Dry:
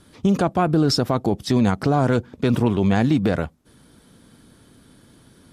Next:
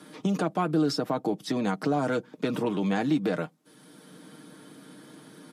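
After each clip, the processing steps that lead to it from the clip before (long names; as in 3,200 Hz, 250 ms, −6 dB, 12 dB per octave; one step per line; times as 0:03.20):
high-pass filter 180 Hz 24 dB per octave
comb filter 6.5 ms, depth 54%
multiband upward and downward compressor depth 40%
level −7 dB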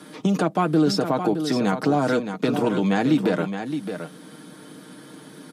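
single-tap delay 618 ms −8.5 dB
level +5.5 dB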